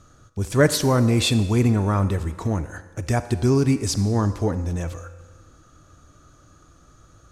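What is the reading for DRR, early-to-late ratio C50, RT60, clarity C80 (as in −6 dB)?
11.5 dB, 12.5 dB, 1.4 s, 14.0 dB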